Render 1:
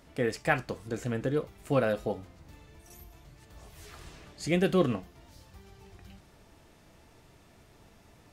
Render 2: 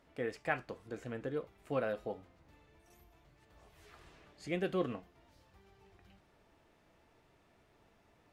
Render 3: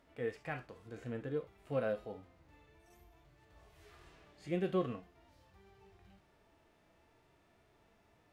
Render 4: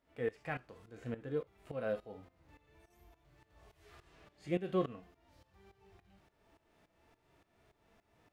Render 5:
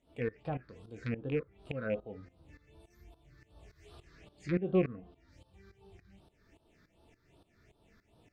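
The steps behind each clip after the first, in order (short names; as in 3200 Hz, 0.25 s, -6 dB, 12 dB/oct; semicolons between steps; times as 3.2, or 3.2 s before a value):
tone controls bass -6 dB, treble -9 dB; gain -7.5 dB
harmonic-percussive split percussive -12 dB; gain +2.5 dB
tremolo saw up 3.5 Hz, depth 85%; gain +3 dB
rattling part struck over -42 dBFS, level -28 dBFS; phaser stages 6, 2.6 Hz, lowest notch 740–2000 Hz; treble ducked by the level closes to 1400 Hz, closed at -38 dBFS; gain +6 dB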